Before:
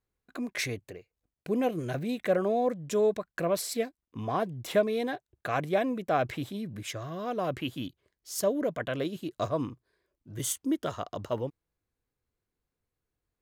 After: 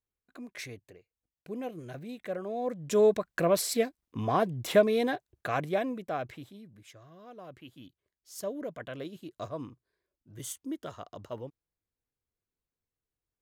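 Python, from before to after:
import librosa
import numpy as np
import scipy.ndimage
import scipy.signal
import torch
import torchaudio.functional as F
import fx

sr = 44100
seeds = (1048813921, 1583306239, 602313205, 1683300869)

y = fx.gain(x, sr, db=fx.line((2.46, -9.5), (3.0, 3.0), (5.06, 3.0), (5.9, -3.5), (6.79, -16.0), (7.62, -16.0), (8.52, -8.0)))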